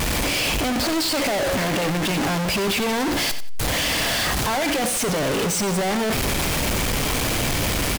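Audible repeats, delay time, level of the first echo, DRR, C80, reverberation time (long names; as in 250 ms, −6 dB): 2, 90 ms, −11.5 dB, no reverb audible, no reverb audible, no reverb audible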